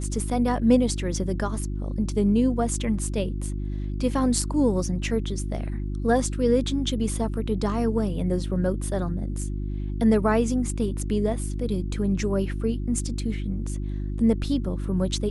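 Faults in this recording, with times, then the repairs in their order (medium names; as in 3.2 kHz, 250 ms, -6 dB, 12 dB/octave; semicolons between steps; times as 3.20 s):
hum 50 Hz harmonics 7 -29 dBFS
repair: de-hum 50 Hz, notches 7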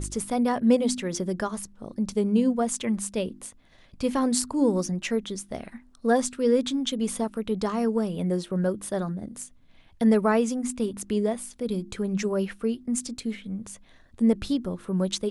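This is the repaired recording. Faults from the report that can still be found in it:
nothing left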